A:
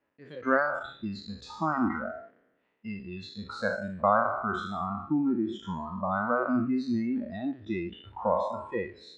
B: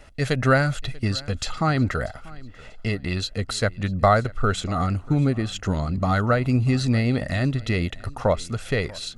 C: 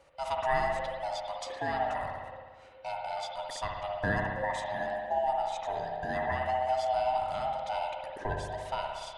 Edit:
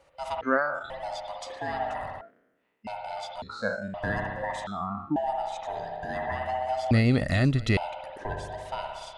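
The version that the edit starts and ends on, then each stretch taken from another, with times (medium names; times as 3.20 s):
C
0.41–0.90 s: from A
2.21–2.87 s: from A
3.42–3.94 s: from A
4.67–5.16 s: from A
6.91–7.77 s: from B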